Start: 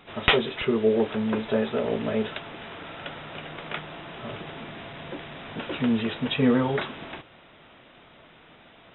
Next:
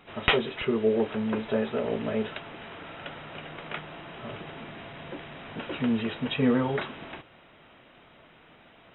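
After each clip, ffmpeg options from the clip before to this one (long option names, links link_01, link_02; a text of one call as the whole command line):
ffmpeg -i in.wav -af "bandreject=frequency=3500:width=13,volume=-2.5dB" out.wav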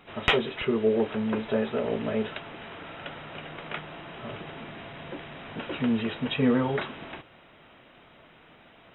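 ffmpeg -i in.wav -af "acontrast=42,volume=-5dB" out.wav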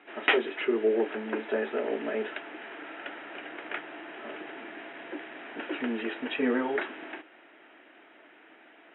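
ffmpeg -i in.wav -af "highpass=frequency=300:width=0.5412,highpass=frequency=300:width=1.3066,equalizer=frequency=310:width_type=q:width=4:gain=7,equalizer=frequency=520:width_type=q:width=4:gain=-5,equalizer=frequency=1100:width_type=q:width=4:gain=-6,equalizer=frequency=1700:width_type=q:width=4:gain=5,lowpass=frequency=2900:width=0.5412,lowpass=frequency=2900:width=1.3066" out.wav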